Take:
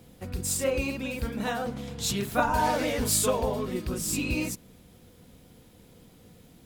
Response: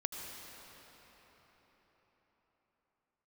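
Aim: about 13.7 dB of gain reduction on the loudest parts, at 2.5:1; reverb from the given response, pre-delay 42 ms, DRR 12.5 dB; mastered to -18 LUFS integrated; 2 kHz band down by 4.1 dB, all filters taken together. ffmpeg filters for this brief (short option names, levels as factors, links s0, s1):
-filter_complex "[0:a]equalizer=f=2000:t=o:g=-6,acompressor=threshold=0.00794:ratio=2.5,asplit=2[s0][s1];[1:a]atrim=start_sample=2205,adelay=42[s2];[s1][s2]afir=irnorm=-1:irlink=0,volume=0.2[s3];[s0][s3]amix=inputs=2:normalize=0,volume=11.9"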